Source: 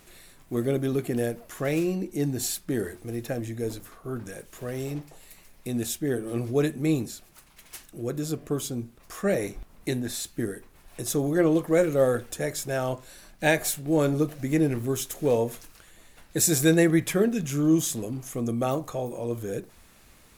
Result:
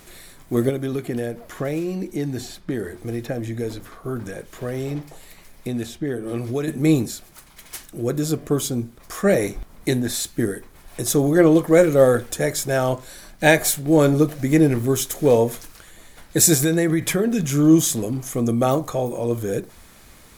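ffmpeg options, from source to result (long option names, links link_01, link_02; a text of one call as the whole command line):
ffmpeg -i in.wav -filter_complex "[0:a]asettb=1/sr,asplit=3[link_01][link_02][link_03];[link_01]atrim=end=0.694[link_04];[link_02]atrim=start=0.69:end=6.68,asetpts=PTS-STARTPTS,afade=type=in:duration=0.004:curve=qsin,afade=type=out:start_time=5.986:duration=0.004:curve=qsin,acrossover=split=1100|4800[link_05][link_06][link_07];[link_05]acompressor=threshold=-31dB:ratio=4[link_08];[link_06]acompressor=threshold=-47dB:ratio=4[link_09];[link_07]acompressor=threshold=-56dB:ratio=4[link_10];[link_08][link_09][link_10]amix=inputs=3:normalize=0[link_11];[link_03]atrim=start=6.676[link_12];[link_04][link_11]acrossfade=duration=0.004:curve1=hsin:curve2=qsin[link_13];[link_13][link_12]acrossfade=duration=0.004:curve1=qsin:curve2=hsin,asettb=1/sr,asplit=3[link_14][link_15][link_16];[link_14]atrim=end=16.544[link_17];[link_15]atrim=start=16.54:end=17.41,asetpts=PTS-STARTPTS,afade=type=in:duration=0.004:curve=qsin,afade=type=out:start_time=0.866:duration=0.004:curve=qsin,acompressor=threshold=-23dB:ratio=6:attack=3.2:release=140:knee=1:detection=peak[link_18];[link_16]atrim=start=17.406[link_19];[link_17][link_18]acrossfade=duration=0.004:curve1=hsin:curve2=qsin[link_20];[link_20][link_19]acrossfade=duration=0.004:curve1=qsin:curve2=hsin,bandreject=frequency=2700:width=14,volume=7.5dB" out.wav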